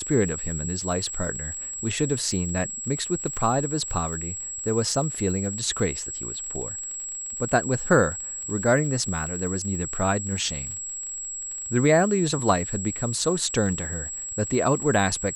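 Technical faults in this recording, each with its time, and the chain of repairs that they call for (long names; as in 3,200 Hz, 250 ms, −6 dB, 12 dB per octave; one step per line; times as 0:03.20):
surface crackle 39 per second −33 dBFS
whistle 7,700 Hz −31 dBFS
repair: click removal
notch filter 7,700 Hz, Q 30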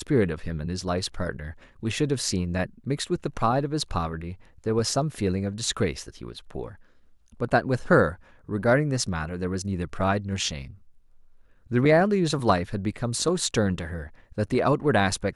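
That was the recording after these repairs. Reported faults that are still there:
none of them is left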